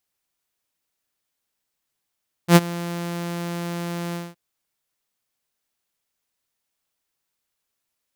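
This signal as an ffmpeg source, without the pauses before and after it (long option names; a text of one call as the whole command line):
ffmpeg -f lavfi -i "aevalsrc='0.631*(2*mod(172*t,1)-1)':duration=1.868:sample_rate=44100,afade=type=in:duration=0.079,afade=type=out:start_time=0.079:duration=0.037:silence=0.1,afade=type=out:start_time=1.66:duration=0.208" out.wav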